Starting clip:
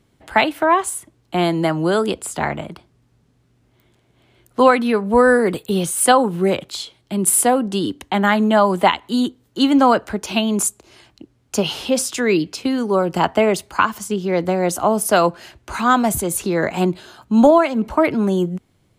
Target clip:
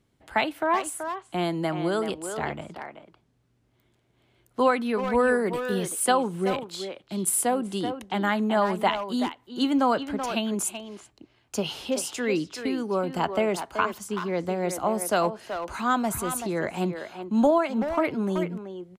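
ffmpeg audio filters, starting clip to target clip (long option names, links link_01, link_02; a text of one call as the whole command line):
ffmpeg -i in.wav -filter_complex "[0:a]asplit=2[link_01][link_02];[link_02]adelay=380,highpass=300,lowpass=3400,asoftclip=type=hard:threshold=-10dB,volume=-7dB[link_03];[link_01][link_03]amix=inputs=2:normalize=0,volume=-9dB" out.wav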